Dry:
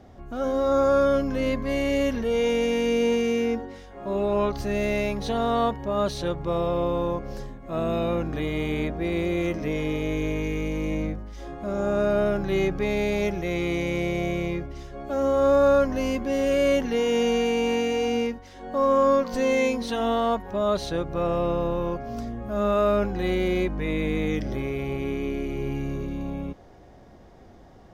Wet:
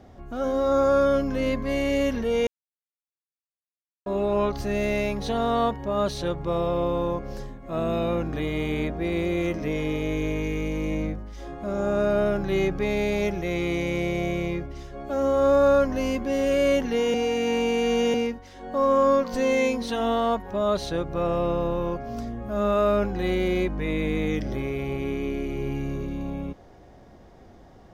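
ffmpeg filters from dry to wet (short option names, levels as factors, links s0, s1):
-filter_complex "[0:a]asplit=5[s0][s1][s2][s3][s4];[s0]atrim=end=2.47,asetpts=PTS-STARTPTS,afade=t=out:st=2.466:d=0.004:c=hsin[s5];[s1]atrim=start=2.47:end=4.06,asetpts=PTS-STARTPTS,volume=0[s6];[s2]atrim=start=4.06:end=17.142,asetpts=PTS-STARTPTS,afade=t=in:d=0.004:c=hsin[s7];[s3]atrim=start=17.138:end=18.142,asetpts=PTS-STARTPTS,areverse[s8];[s4]atrim=start=18.138[s9];[s5][s6][s7]concat=n=3:v=0:a=1[s10];[s10][s8]acrossfade=d=0.004:c1=hsin:c2=hsin[s11];[s11][s9]acrossfade=d=0.004:c1=hsin:c2=hsin"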